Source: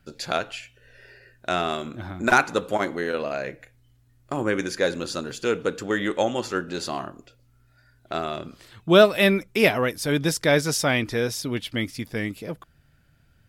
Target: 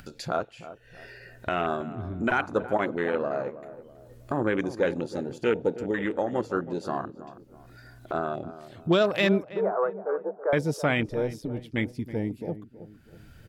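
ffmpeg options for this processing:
-filter_complex "[0:a]afwtdn=0.0398,asettb=1/sr,asplit=3[a][b][c];[a]atrim=end=5.824[d];[b]atrim=start=5.82:end=6.33,asetpts=PTS-STARTPTS,afade=t=in:d=0.004:c=qsin,afade=t=out:st=0.506:d=0.004:c=qsin,acompressor=threshold=-24dB:ratio=4[e];[c]atrim=start=6.326[f];[d][e]acrossfade=d=0.004:c1=hsin:c2=qsin[g];[g][f]acrossfade=d=0.004:c1=qsin:c2=hsin,alimiter=limit=-13.5dB:level=0:latency=1:release=37,acompressor=mode=upward:threshold=-29dB:ratio=2.5,asettb=1/sr,asplit=3[h][i][j];[h]atrim=end=9.454[k];[i]atrim=start=9.45:end=10.53,asetpts=PTS-STARTPTS,afade=t=in:d=0.004:c=qsin,afade=t=out:st=1.076:d=0.004:c=qsin,asuperpass=centerf=740:order=12:qfactor=0.73[l];[j]atrim=start=10.526[m];[k][l]acrossfade=d=0.004:c1=hsin:c2=qsin[n];[n][m]acrossfade=d=0.004:c1=qsin:c2=hsin,asettb=1/sr,asplit=3[o][p][q];[o]atrim=end=11.114[r];[p]atrim=start=11.11:end=11.78,asetpts=PTS-STARTPTS,afade=t=in:d=0.004:c=qsin,afade=t=out:st=0.666:d=0.004:c=qsin,tremolo=f=120:d=0.667[s];[q]atrim=start=11.776[t];[r][s]acrossfade=d=0.004:c1=hsin:c2=qsin[u];[u][t]acrossfade=d=0.004:c1=qsin:c2=hsin,asplit=2[v][w];[w]adelay=324,lowpass=f=1k:p=1,volume=-13dB,asplit=2[x][y];[y]adelay=324,lowpass=f=1k:p=1,volume=0.43,asplit=2[z][aa];[aa]adelay=324,lowpass=f=1k:p=1,volume=0.43,asplit=2[ab][ac];[ac]adelay=324,lowpass=f=1k:p=1,volume=0.43[ad];[v][x][z][ab][ad]amix=inputs=5:normalize=0"

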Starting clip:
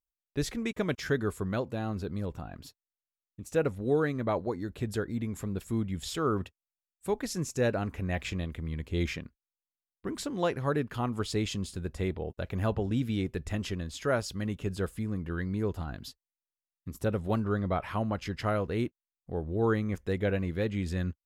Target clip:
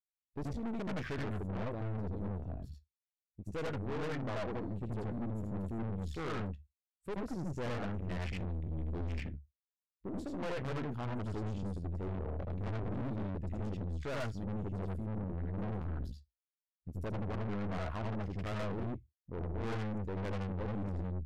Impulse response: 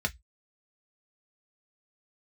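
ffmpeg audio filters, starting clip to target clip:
-filter_complex "[0:a]afwtdn=0.0141,asplit=2[a][b];[1:a]atrim=start_sample=2205,adelay=77[c];[b][c]afir=irnorm=-1:irlink=0,volume=-5dB[d];[a][d]amix=inputs=2:normalize=0,aeval=exprs='(tanh(50.1*val(0)+0.65)-tanh(0.65))/50.1':c=same,volume=-2dB"

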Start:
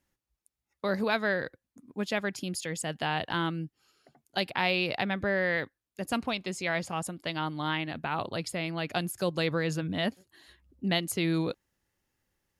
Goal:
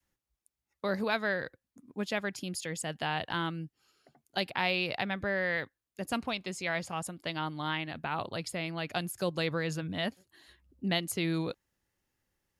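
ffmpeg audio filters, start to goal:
-af "adynamicequalizer=threshold=0.01:dfrequency=300:dqfactor=0.78:tfrequency=300:tqfactor=0.78:attack=5:release=100:ratio=0.375:range=2:mode=cutabove:tftype=bell,volume=-2dB"

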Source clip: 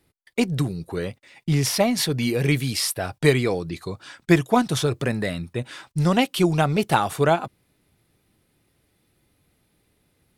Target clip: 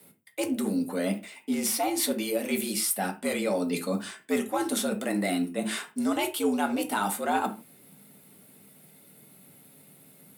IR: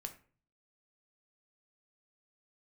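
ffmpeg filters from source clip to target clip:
-filter_complex "[0:a]acontrast=39,aexciter=amount=2.3:drive=8.1:freq=7.5k,areverse,acompressor=threshold=-28dB:ratio=6,areverse,afreqshift=93[a];[1:a]atrim=start_sample=2205,afade=t=out:st=0.25:d=0.01,atrim=end_sample=11466,asetrate=52920,aresample=44100[b];[a][b]afir=irnorm=-1:irlink=0,volume=7dB"

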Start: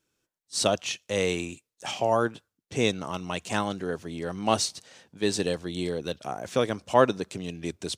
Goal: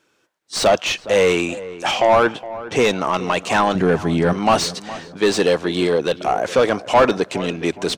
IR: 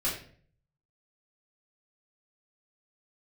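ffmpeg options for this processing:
-filter_complex "[0:a]asettb=1/sr,asplit=3[a][b][c];[a]atrim=end=3.754[d];[b]atrim=start=3.75:end=4.33,asetpts=PTS-STARTPTS,afade=t=in:d=0.004:c=qsin,afade=t=out:st=0.576:d=0.004:c=qsin,bass=f=250:g=14,treble=f=4k:g=2[e];[c]atrim=start=4.326[f];[d][e]acrossfade=d=0.004:c1=hsin:c2=qsin[g];[g][f]acrossfade=d=0.004:c1=qsin:c2=hsin,asplit=2[h][i];[i]highpass=f=720:p=1,volume=25dB,asoftclip=type=tanh:threshold=-5.5dB[j];[h][j]amix=inputs=2:normalize=0,lowpass=f=1.6k:p=1,volume=-6dB,asplit=2[k][l];[l]adelay=415,lowpass=f=1.7k:p=1,volume=-15.5dB,asplit=2[m][n];[n]adelay=415,lowpass=f=1.7k:p=1,volume=0.38,asplit=2[o][p];[p]adelay=415,lowpass=f=1.7k:p=1,volume=0.38[q];[k][m][o][q]amix=inputs=4:normalize=0,volume=2dB"

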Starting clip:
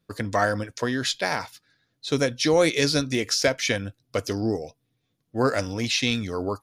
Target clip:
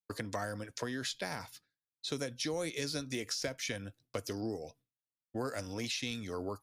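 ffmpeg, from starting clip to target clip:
-filter_complex "[0:a]agate=range=-33dB:threshold=-47dB:ratio=3:detection=peak,acrossover=split=250|7700[a][b][c];[a]acompressor=threshold=-42dB:ratio=4[d];[b]acompressor=threshold=-35dB:ratio=4[e];[c]acompressor=threshold=-44dB:ratio=4[f];[d][e][f]amix=inputs=3:normalize=0,volume=-3dB"

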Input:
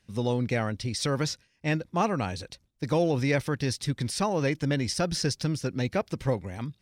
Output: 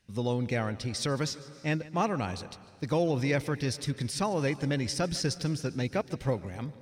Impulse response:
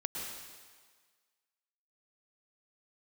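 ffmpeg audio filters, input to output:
-filter_complex "[0:a]asplit=2[a][b];[1:a]atrim=start_sample=2205,adelay=149[c];[b][c]afir=irnorm=-1:irlink=0,volume=-18dB[d];[a][d]amix=inputs=2:normalize=0,volume=-2.5dB"

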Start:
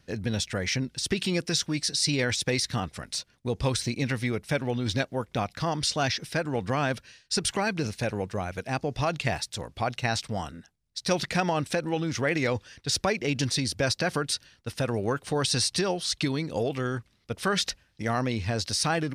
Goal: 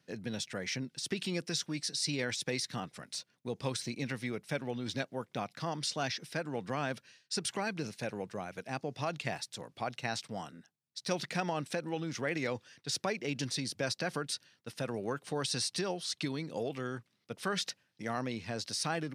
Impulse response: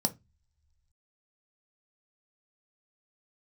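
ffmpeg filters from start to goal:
-af "highpass=f=130:w=0.5412,highpass=f=130:w=1.3066,volume=-8dB"

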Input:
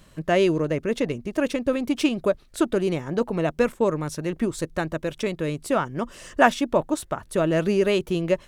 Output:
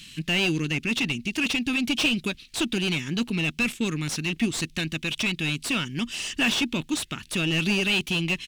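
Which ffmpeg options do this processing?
-filter_complex "[0:a]firequalizer=gain_entry='entry(230,0);entry(580,-29);entry(2600,12)':delay=0.05:min_phase=1,asplit=2[a][b];[b]highpass=f=720:p=1,volume=19dB,asoftclip=type=tanh:threshold=-11.5dB[c];[a][c]amix=inputs=2:normalize=0,lowpass=f=1.5k:p=1,volume=-6dB"

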